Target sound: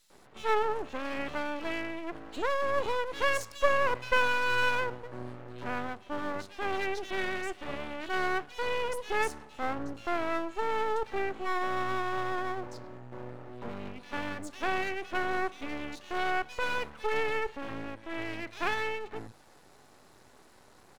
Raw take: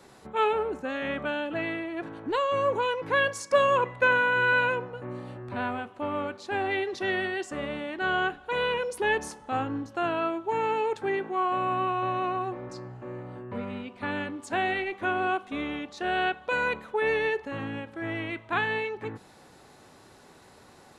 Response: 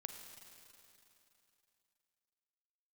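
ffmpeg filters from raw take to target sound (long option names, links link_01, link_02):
-filter_complex "[0:a]acrossover=split=170|2800[link_01][link_02][link_03];[link_02]adelay=100[link_04];[link_01]adelay=140[link_05];[link_05][link_04][link_03]amix=inputs=3:normalize=0,aeval=exprs='max(val(0),0)':channel_layout=same"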